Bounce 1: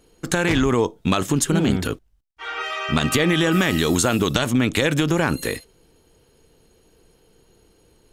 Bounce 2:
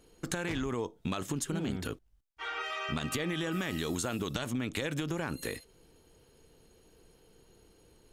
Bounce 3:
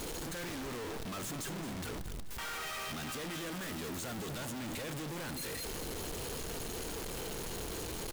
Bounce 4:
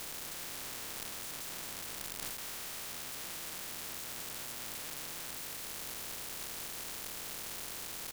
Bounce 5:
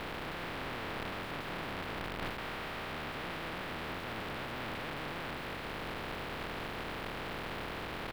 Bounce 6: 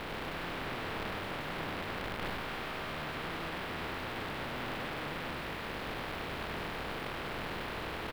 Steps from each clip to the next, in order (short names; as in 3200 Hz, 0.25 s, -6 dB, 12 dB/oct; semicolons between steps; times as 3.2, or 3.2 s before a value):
compressor 2.5:1, threshold -31 dBFS, peak gain reduction 11 dB; gain -4.5 dB
infinite clipping; on a send: feedback echo 0.216 s, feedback 53%, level -13 dB; on the sum: gain -3.5 dB
spectral contrast lowered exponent 0.18; gain -2.5 dB
air absorption 460 m; gain +12 dB
echo 99 ms -4.5 dB